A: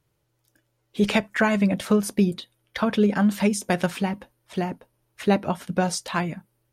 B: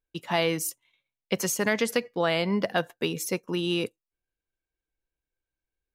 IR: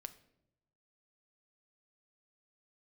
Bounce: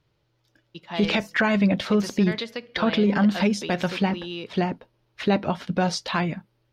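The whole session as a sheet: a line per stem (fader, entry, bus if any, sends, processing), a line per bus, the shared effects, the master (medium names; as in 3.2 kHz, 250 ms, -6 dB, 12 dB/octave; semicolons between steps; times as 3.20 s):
+2.5 dB, 0.00 s, no send, none
-1.0 dB, 0.60 s, send -9 dB, auto duck -11 dB, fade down 1.00 s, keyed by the first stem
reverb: on, RT60 0.85 s, pre-delay 5 ms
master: resonant high shelf 6.5 kHz -14 dB, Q 1.5; peak limiter -12 dBFS, peak gain reduction 8.5 dB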